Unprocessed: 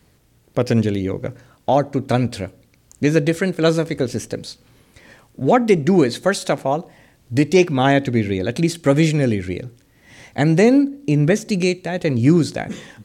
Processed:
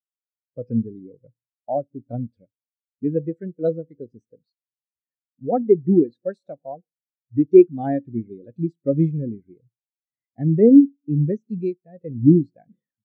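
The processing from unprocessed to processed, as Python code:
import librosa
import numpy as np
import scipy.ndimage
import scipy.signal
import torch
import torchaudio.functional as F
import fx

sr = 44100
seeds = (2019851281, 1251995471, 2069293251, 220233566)

y = fx.peak_eq(x, sr, hz=92.0, db=-6.5, octaves=0.2)
y = fx.spectral_expand(y, sr, expansion=2.5)
y = y * librosa.db_to_amplitude(1.5)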